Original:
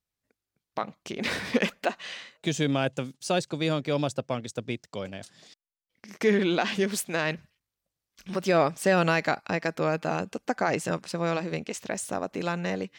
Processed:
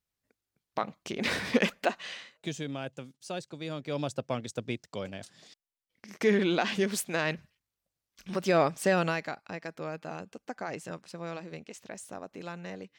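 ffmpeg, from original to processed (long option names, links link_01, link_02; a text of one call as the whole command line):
ffmpeg -i in.wav -af "volume=8.5dB,afade=type=out:start_time=1.92:duration=0.72:silence=0.298538,afade=type=in:start_time=3.69:duration=0.66:silence=0.354813,afade=type=out:start_time=8.83:duration=0.47:silence=0.354813" out.wav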